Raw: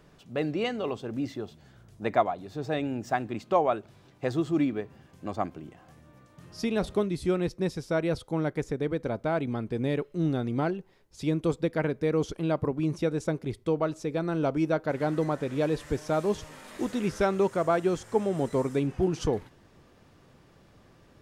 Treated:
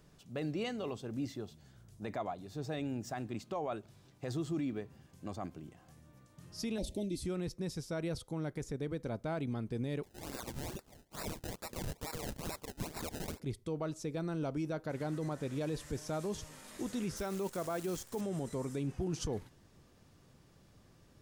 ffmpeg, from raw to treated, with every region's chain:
-filter_complex "[0:a]asettb=1/sr,asplit=3[s0][s1][s2];[s0]atrim=end=6.784[s3];[s1]atrim=start=6.78:end=7.2,asetpts=PTS-STARTPTS,afade=t=in:d=0.004:c=qsin,afade=t=out:st=0.416:d=0.004:c=qsin,asuperstop=centerf=1300:order=4:qfactor=0.74,aecho=1:1:3.4:0.59,atrim=end_sample=18522[s4];[s2]atrim=start=7.196[s5];[s3][s4]acrossfade=d=0.004:c1=hsin:c2=qsin[s6];[s6][s5]acrossfade=d=0.004:c1=qsin:c2=hsin,asettb=1/sr,asplit=3[s7][s8][s9];[s7]atrim=end=10.034[s10];[s8]atrim=start=10.03:end=13.4,asetpts=PTS-STARTPTS,afade=t=in:d=0.004:c=qsin,afade=t=out:st=3.366:d=0.004:c=qsin,highpass=730,highshelf=f=1500:t=q:w=3:g=13.5,acrusher=samples=27:mix=1:aa=0.000001:lfo=1:lforange=27:lforate=2.3[s11];[s9]atrim=start=13.396[s12];[s10][s11]acrossfade=d=0.004:c1=hsin:c2=qsin[s13];[s13][s12]acrossfade=d=0.004:c1=qsin:c2=hsin,asettb=1/sr,asplit=3[s14][s15][s16];[s14]atrim=end=17.174[s17];[s15]atrim=start=17.17:end=18.21,asetpts=PTS-STARTPTS,afade=t=in:d=0.004:c=qsin,afade=t=out:st=1.036:d=0.004:c=qsin,equalizer=f=130:t=o:w=0.36:g=-12,acrusher=bits=8:dc=4:mix=0:aa=0.000001[s18];[s16]atrim=start=18.206[s19];[s17][s18]acrossfade=d=0.004:c1=hsin:c2=qsin[s20];[s20][s19]acrossfade=d=0.004:c1=qsin:c2=hsin,bass=f=250:g=5,treble=f=4000:g=9,alimiter=limit=0.1:level=0:latency=1:release=25,volume=0.376"

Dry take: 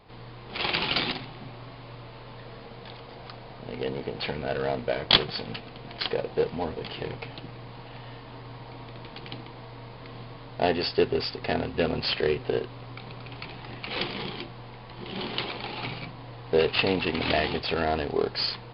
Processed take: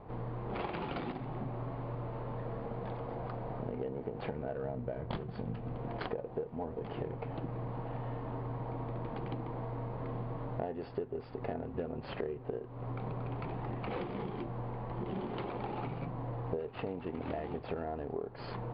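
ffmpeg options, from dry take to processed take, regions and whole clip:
-filter_complex "[0:a]asettb=1/sr,asplit=3[s0][s1][s2];[s0]atrim=end=4.644[s3];[s1]atrim=start=4.64:end=5.76,asetpts=PTS-STARTPTS,afade=t=in:d=0.004:c=qsin,afade=t=out:st=1.116:d=0.004:c=qsin,bass=f=250:g=8,treble=f=4000:g=1,asplit=2[s4][s5];[s5]adelay=24,volume=0.2[s6];[s4][s6]amix=inputs=2:normalize=0,atrim=end_sample=49392[s7];[s2]atrim=start=5.756[s8];[s3][s7]acrossfade=d=0.004:c1=hsin:c2=qsin[s9];[s9][s8]acrossfade=d=0.004:c1=qsin:c2=hsin,lowpass=1000,acompressor=threshold=0.01:ratio=16,volume=2"

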